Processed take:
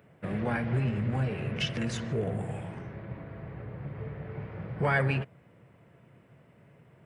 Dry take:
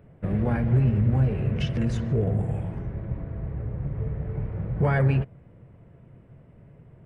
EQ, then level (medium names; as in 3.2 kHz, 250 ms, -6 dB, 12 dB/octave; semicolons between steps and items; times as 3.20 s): high-pass 120 Hz 12 dB/octave; tilt shelf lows -6 dB, about 900 Hz; 0.0 dB